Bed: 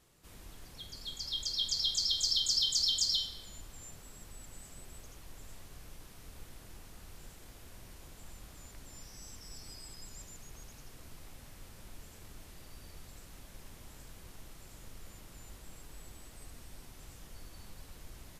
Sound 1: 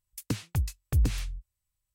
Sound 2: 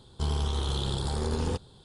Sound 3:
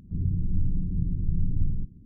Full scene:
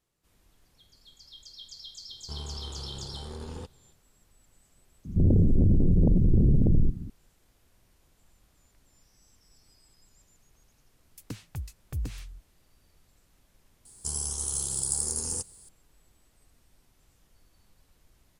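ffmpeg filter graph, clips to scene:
ffmpeg -i bed.wav -i cue0.wav -i cue1.wav -i cue2.wav -filter_complex "[2:a]asplit=2[link_01][link_02];[0:a]volume=-13dB[link_03];[3:a]aeval=exprs='0.251*sin(PI/2*3.98*val(0)/0.251)':channel_layout=same[link_04];[link_02]aexciter=amount=13.5:drive=10:freq=5800[link_05];[link_01]atrim=end=1.84,asetpts=PTS-STARTPTS,volume=-10.5dB,afade=type=in:duration=0.004:curve=hsin,afade=type=out:start_time=1.836:duration=0.004:curve=hsin,adelay=2090[link_06];[link_04]atrim=end=2.05,asetpts=PTS-STARTPTS,volume=-4dB,afade=type=in:duration=0.004:curve=hsin,afade=type=out:start_time=2.046:duration=0.004:curve=hsin,adelay=222705S[link_07];[1:a]atrim=end=1.94,asetpts=PTS-STARTPTS,volume=-8.5dB,afade=type=in:duration=0.004:curve=hsin,afade=type=out:start_time=1.936:duration=0.004:curve=hsin,adelay=11000[link_08];[link_05]atrim=end=1.84,asetpts=PTS-STARTPTS,volume=-12dB,afade=type=in:duration=0.004:curve=hsin,afade=type=out:start_time=1.836:duration=0.004:curve=hsin,adelay=13850[link_09];[link_03][link_06][link_07][link_08][link_09]amix=inputs=5:normalize=0" out.wav

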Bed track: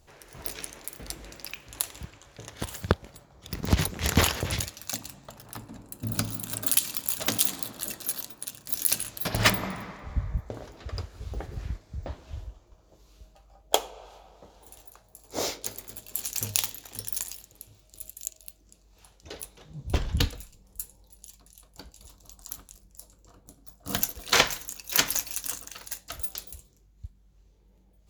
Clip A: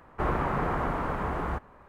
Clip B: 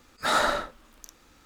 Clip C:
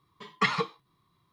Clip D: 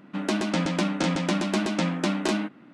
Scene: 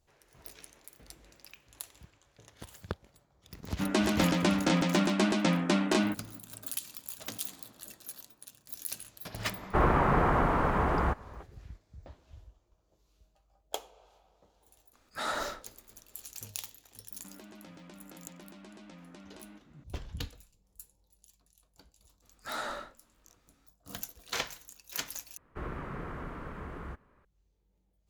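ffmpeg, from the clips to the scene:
ffmpeg -i bed.wav -i cue0.wav -i cue1.wav -i cue2.wav -i cue3.wav -filter_complex "[4:a]asplit=2[link_01][link_02];[1:a]asplit=2[link_03][link_04];[2:a]asplit=2[link_05][link_06];[0:a]volume=-13.5dB[link_07];[link_03]acontrast=71[link_08];[link_02]acompressor=threshold=-38dB:ratio=6:attack=3.2:release=140:knee=1:detection=peak[link_09];[link_06]flanger=delay=16:depth=6.7:speed=2.5[link_10];[link_04]equalizer=frequency=800:width=1.6:gain=-9[link_11];[link_07]asplit=2[link_12][link_13];[link_12]atrim=end=25.374[link_14];[link_11]atrim=end=1.88,asetpts=PTS-STARTPTS,volume=-9.5dB[link_15];[link_13]atrim=start=27.246[link_16];[link_01]atrim=end=2.73,asetpts=PTS-STARTPTS,volume=-1.5dB,afade=type=in:duration=0.004:curve=hsin,afade=type=out:start_time=2.726:duration=0.004:curve=hsin,adelay=3660[link_17];[link_08]atrim=end=1.88,asetpts=PTS-STARTPTS,volume=-3.5dB,afade=type=in:duration=0.004:curve=hsin,afade=type=out:start_time=1.876:duration=0.004:curve=hsin,adelay=9550[link_18];[link_05]atrim=end=1.45,asetpts=PTS-STARTPTS,volume=-10.5dB,afade=type=in:duration=0.004:curve=hsin,afade=type=out:start_time=1.446:duration=0.004:curve=hsin,adelay=14930[link_19];[link_09]atrim=end=2.73,asetpts=PTS-STARTPTS,volume=-11dB,afade=type=in:duration=0.004:curve=hsin,afade=type=out:start_time=2.726:duration=0.004:curve=hsin,adelay=17110[link_20];[link_10]atrim=end=1.45,asetpts=PTS-STARTPTS,volume=-10.5dB,afade=type=in:duration=0.004:curve=hsin,afade=type=out:start_time=1.446:duration=0.004:curve=hsin,adelay=22220[link_21];[link_14][link_15]acrossfade=duration=0.004:curve1=hsin:curve2=hsin[link_22];[link_22][link_16]acrossfade=duration=0.004:curve1=hsin:curve2=hsin[link_23];[link_23][link_17][link_18][link_19][link_20][link_21]amix=inputs=6:normalize=0" out.wav

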